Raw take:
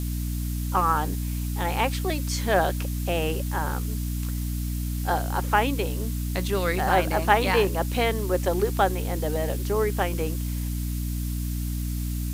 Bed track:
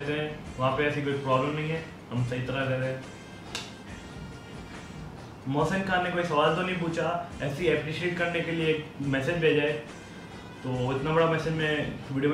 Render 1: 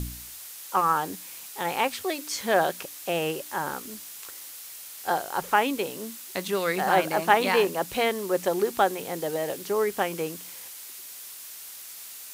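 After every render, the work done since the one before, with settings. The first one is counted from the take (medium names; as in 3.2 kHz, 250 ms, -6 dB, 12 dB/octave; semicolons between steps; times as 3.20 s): de-hum 60 Hz, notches 5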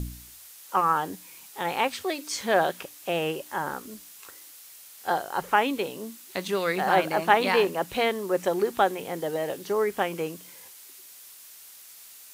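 noise print and reduce 6 dB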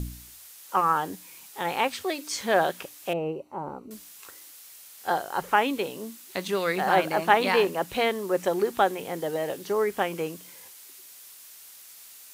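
3.13–3.91 s: boxcar filter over 26 samples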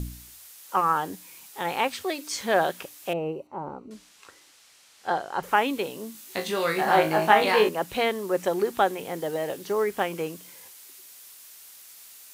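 3.47–5.43 s: distance through air 73 m; 6.13–7.69 s: flutter echo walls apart 3.2 m, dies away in 0.25 s; 9.03–10.80 s: short-mantissa float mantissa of 4-bit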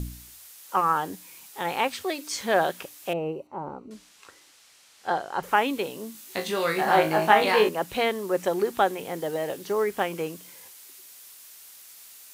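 no audible change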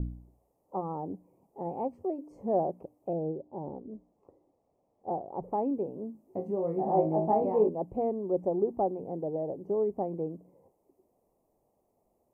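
inverse Chebyshev low-pass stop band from 1.4 kHz, stop band 40 dB; dynamic bell 510 Hz, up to -4 dB, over -38 dBFS, Q 1.5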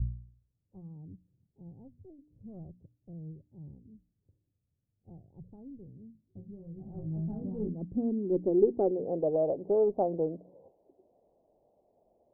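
single-diode clipper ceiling -20 dBFS; low-pass sweep 110 Hz -> 640 Hz, 6.90–9.35 s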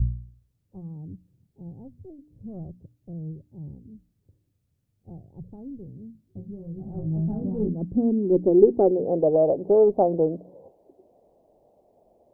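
trim +8.5 dB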